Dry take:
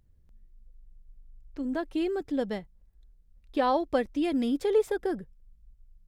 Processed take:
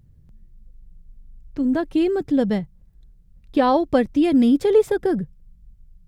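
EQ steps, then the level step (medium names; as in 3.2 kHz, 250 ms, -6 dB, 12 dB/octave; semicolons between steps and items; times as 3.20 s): peaking EQ 140 Hz +13.5 dB 1.5 oct; +6.0 dB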